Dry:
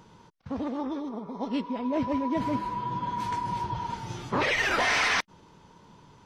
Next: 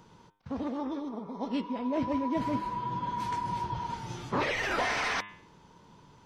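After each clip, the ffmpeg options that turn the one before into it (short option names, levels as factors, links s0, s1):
-filter_complex "[0:a]bandreject=f=102:t=h:w=4,bandreject=f=204:t=h:w=4,bandreject=f=306:t=h:w=4,bandreject=f=408:t=h:w=4,bandreject=f=510:t=h:w=4,bandreject=f=612:t=h:w=4,bandreject=f=714:t=h:w=4,bandreject=f=816:t=h:w=4,bandreject=f=918:t=h:w=4,bandreject=f=1020:t=h:w=4,bandreject=f=1122:t=h:w=4,bandreject=f=1224:t=h:w=4,bandreject=f=1326:t=h:w=4,bandreject=f=1428:t=h:w=4,bandreject=f=1530:t=h:w=4,bandreject=f=1632:t=h:w=4,bandreject=f=1734:t=h:w=4,bandreject=f=1836:t=h:w=4,bandreject=f=1938:t=h:w=4,bandreject=f=2040:t=h:w=4,bandreject=f=2142:t=h:w=4,bandreject=f=2244:t=h:w=4,bandreject=f=2346:t=h:w=4,bandreject=f=2448:t=h:w=4,bandreject=f=2550:t=h:w=4,bandreject=f=2652:t=h:w=4,bandreject=f=2754:t=h:w=4,bandreject=f=2856:t=h:w=4,bandreject=f=2958:t=h:w=4,bandreject=f=3060:t=h:w=4,bandreject=f=3162:t=h:w=4,bandreject=f=3264:t=h:w=4,bandreject=f=3366:t=h:w=4,bandreject=f=3468:t=h:w=4,bandreject=f=3570:t=h:w=4,bandreject=f=3672:t=h:w=4,acrossover=split=1200[s0][s1];[s1]alimiter=limit=0.0631:level=0:latency=1:release=74[s2];[s0][s2]amix=inputs=2:normalize=0,volume=0.794"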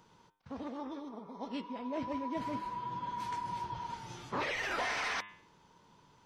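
-af "lowshelf=f=460:g=-6,volume=0.631"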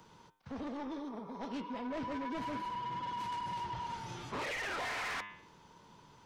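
-filter_complex "[0:a]acrossover=split=110|450|3800[s0][s1][s2][s3];[s3]acompressor=threshold=0.00112:ratio=6[s4];[s0][s1][s2][s4]amix=inputs=4:normalize=0,asoftclip=type=tanh:threshold=0.0106,volume=1.58"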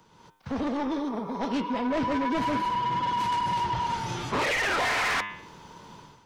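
-af "dynaudnorm=f=110:g=5:m=3.98"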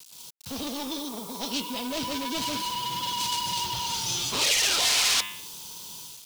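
-af "acrusher=bits=8:mix=0:aa=0.000001,aexciter=amount=10.1:drive=4:freq=2800,volume=0.501"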